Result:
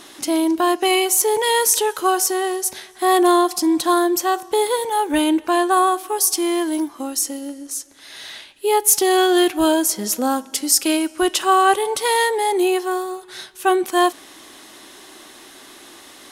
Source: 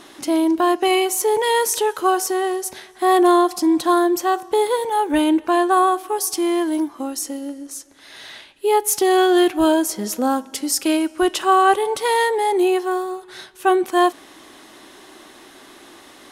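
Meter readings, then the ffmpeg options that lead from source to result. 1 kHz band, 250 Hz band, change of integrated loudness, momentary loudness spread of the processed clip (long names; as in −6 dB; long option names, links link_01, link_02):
−0.5 dB, −1.0 dB, +0.5 dB, 11 LU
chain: -af "highshelf=frequency=2900:gain=7.5,volume=-1dB"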